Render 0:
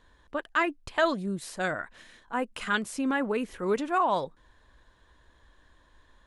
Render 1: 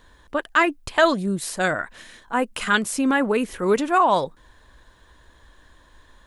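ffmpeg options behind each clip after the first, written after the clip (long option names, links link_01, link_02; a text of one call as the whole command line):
ffmpeg -i in.wav -af "highshelf=frequency=8300:gain=8.5,volume=7.5dB" out.wav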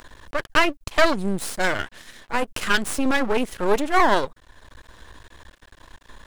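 ffmpeg -i in.wav -af "acompressor=mode=upward:threshold=-38dB:ratio=2.5,aeval=exprs='max(val(0),0)':channel_layout=same,volume=4dB" out.wav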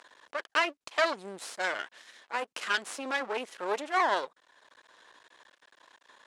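ffmpeg -i in.wav -af "highpass=490,lowpass=7800,volume=-7.5dB" out.wav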